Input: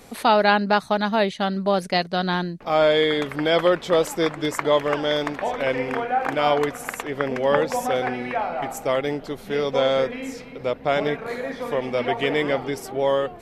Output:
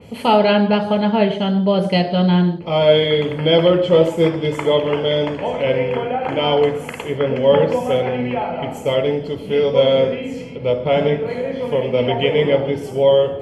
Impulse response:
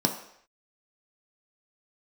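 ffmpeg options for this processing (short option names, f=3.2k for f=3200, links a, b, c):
-filter_complex "[1:a]atrim=start_sample=2205,atrim=end_sample=4410,asetrate=24696,aresample=44100[a];[0:a][a]afir=irnorm=-1:irlink=0,adynamicequalizer=threshold=0.0794:dfrequency=3500:dqfactor=0.7:tfrequency=3500:tqfactor=0.7:attack=5:release=100:ratio=0.375:range=2.5:mode=cutabove:tftype=highshelf,volume=-12dB"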